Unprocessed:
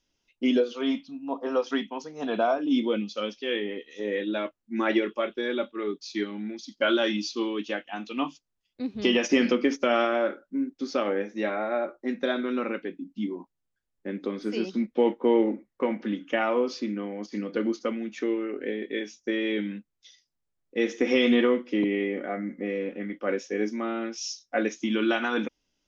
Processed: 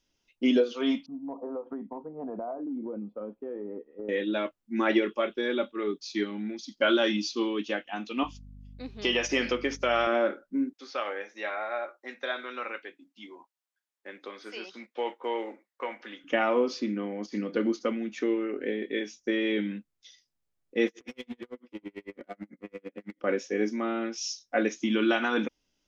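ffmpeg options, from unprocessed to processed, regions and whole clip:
-filter_complex "[0:a]asettb=1/sr,asplit=3[a][b][c];[a]atrim=end=1.064[d];[b]atrim=start=1.06:end=4.09,asetpts=PTS-STARTPTS,afade=t=in:d=0.004:c=qsin,afade=t=out:st=3.026:d=0.004:c=qsin,lowpass=f=1k:w=0.5412,lowpass=f=1k:w=1.3066,acompressor=threshold=-33dB:ratio=5:attack=3.2:release=140:knee=1:detection=peak[e];[c]atrim=start=4.086[f];[d][e]acrossfade=d=0.004:c1=hsin:c2=qsin[g];[g][f]acrossfade=d=0.004:c1=qsin:c2=hsin,asettb=1/sr,asplit=3[h][i][j];[h]atrim=end=8.234[k];[i]atrim=start=8.23:end=10.07,asetpts=PTS-STARTPTS,afade=t=in:d=0.004:c=qsin,afade=t=out:st=1.836:d=0.004:c=qsin,equalizer=f=190:w=0.75:g=-12.5,aeval=exprs='val(0)+0.00501*(sin(2*PI*50*n/s)+sin(2*PI*2*50*n/s)/2+sin(2*PI*3*50*n/s)/3+sin(2*PI*4*50*n/s)/4+sin(2*PI*5*50*n/s)/5)':c=same[l];[j]atrim=start=10.066[m];[k][l]acrossfade=d=0.004:c1=hsin:c2=qsin[n];[n][m]acrossfade=d=0.004:c1=qsin:c2=hsin,asettb=1/sr,asplit=3[o][p][q];[o]atrim=end=10.734[r];[p]atrim=start=10.73:end=16.24,asetpts=PTS-STARTPTS,afade=t=in:d=0.004:c=qsin,afade=t=out:st=5.506:d=0.004:c=qsin,acrossover=split=4300[s][t];[t]acompressor=threshold=-56dB:ratio=4:attack=1:release=60[u];[s][u]amix=inputs=2:normalize=0,highpass=790[v];[q]atrim=start=16.236[w];[r][v]acrossfade=d=0.004:c1=hsin:c2=qsin[x];[x][w]acrossfade=d=0.004:c1=qsin:c2=hsin,asettb=1/sr,asplit=3[y][z][aa];[y]atrim=end=20.874[ab];[z]atrim=start=20.87:end=23.24,asetpts=PTS-STARTPTS,afade=t=in:d=0.004:c=qsin,afade=t=out:st=2.366:d=0.004:c=qsin,acompressor=threshold=-30dB:ratio=12:attack=3.2:release=140:knee=1:detection=peak,asoftclip=type=hard:threshold=-30.5dB,aeval=exprs='val(0)*pow(10,-40*(0.5-0.5*cos(2*PI*9*n/s))/20)':c=same[ac];[aa]atrim=start=23.236[ad];[ab][ac]acrossfade=d=0.004:c1=hsin:c2=qsin[ae];[ae][ad]acrossfade=d=0.004:c1=qsin:c2=hsin"

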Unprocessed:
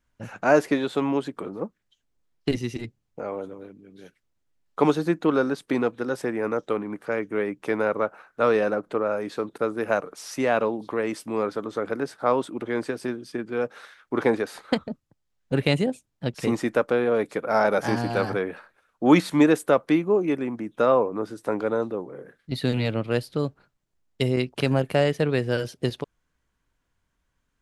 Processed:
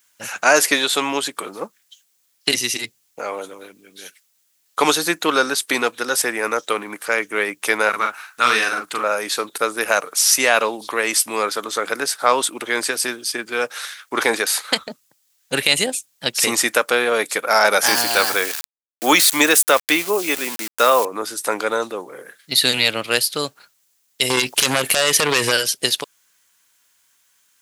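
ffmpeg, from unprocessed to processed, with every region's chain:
-filter_complex "[0:a]asettb=1/sr,asplit=3[a][b][c];[a]atrim=end=7.894[d];[b]atrim=start=7.89:end=9.04,asetpts=PTS-STARTPTS,afade=t=in:d=0.004:c=qsin,afade=t=out:st=1.146:d=0.004:c=qsin,equalizer=f=540:t=o:w=0.87:g=-14.5,asplit=2[e][f];[f]adelay=41,volume=-4dB[g];[e][g]amix=inputs=2:normalize=0,atrim=end_sample=50715[h];[c]atrim=start=9.036[i];[d][h]acrossfade=d=0.004:c1=hsin:c2=qsin[j];[j][i]acrossfade=d=0.004:c1=qsin:c2=hsin,asettb=1/sr,asplit=3[k][l][m];[k]atrim=end=17.864[n];[l]atrim=start=17.86:end=21.05,asetpts=PTS-STARTPTS,afade=t=in:d=0.004:c=qsin,afade=t=out:st=3.186:d=0.004:c=qsin,highpass=49,lowshelf=f=160:g=-7,aeval=exprs='val(0)*gte(abs(val(0)),0.01)':c=same[o];[m]atrim=start=21.046[p];[n][o]acrossfade=d=0.004:c1=hsin:c2=qsin[q];[q][p]acrossfade=d=0.004:c1=qsin:c2=hsin,asettb=1/sr,asplit=3[r][s][t];[r]atrim=end=24.304[u];[s]atrim=start=24.3:end=25.52,asetpts=PTS-STARTPTS,afade=t=in:d=0.004:c=qsin,afade=t=out:st=1.216:d=0.004:c=qsin,acompressor=threshold=-24dB:ratio=4:attack=3.2:release=140:knee=1:detection=peak,aeval=exprs='0.2*sin(PI/2*2.51*val(0)/0.2)':c=same[v];[t]atrim=start=25.516[w];[u][v]acrossfade=d=0.004:c1=hsin:c2=qsin[x];[x][w]acrossfade=d=0.004:c1=qsin:c2=hsin,aderivative,alimiter=level_in=26.5dB:limit=-1dB:release=50:level=0:latency=1,volume=-1dB"

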